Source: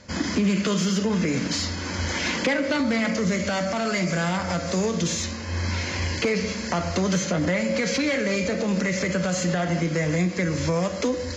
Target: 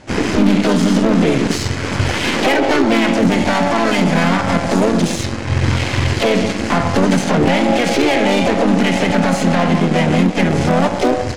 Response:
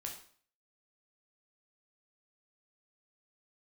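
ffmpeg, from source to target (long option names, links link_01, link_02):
-filter_complex "[0:a]aeval=exprs='0.266*sin(PI/2*1.78*val(0)/0.266)':channel_layout=same,highshelf=frequency=4300:gain=-2,asplit=4[link_01][link_02][link_03][link_04];[link_02]asetrate=52444,aresample=44100,atempo=0.840896,volume=-7dB[link_05];[link_03]asetrate=55563,aresample=44100,atempo=0.793701,volume=-8dB[link_06];[link_04]asetrate=66075,aresample=44100,atempo=0.66742,volume=-3dB[link_07];[link_01][link_05][link_06][link_07]amix=inputs=4:normalize=0,aemphasis=mode=reproduction:type=50fm,aeval=exprs='0.531*(cos(1*acos(clip(val(0)/0.531,-1,1)))-cos(1*PI/2))+0.0422*(cos(6*acos(clip(val(0)/0.531,-1,1)))-cos(6*PI/2))+0.0299*(cos(7*acos(clip(val(0)/0.531,-1,1)))-cos(7*PI/2))':channel_layout=same"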